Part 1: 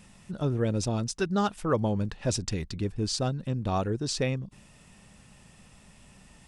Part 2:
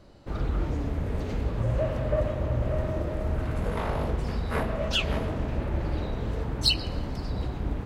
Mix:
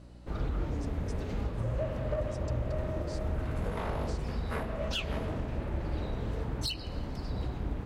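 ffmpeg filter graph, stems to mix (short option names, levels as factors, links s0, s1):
-filter_complex "[0:a]acompressor=threshold=0.0398:ratio=6,volume=0.141[s0];[1:a]aeval=exprs='val(0)+0.00501*(sin(2*PI*60*n/s)+sin(2*PI*2*60*n/s)/2+sin(2*PI*3*60*n/s)/3+sin(2*PI*4*60*n/s)/4+sin(2*PI*5*60*n/s)/5)':c=same,aeval=exprs='clip(val(0),-1,0.126)':c=same,volume=0.631[s1];[s0][s1]amix=inputs=2:normalize=0,alimiter=limit=0.0708:level=0:latency=1:release=370"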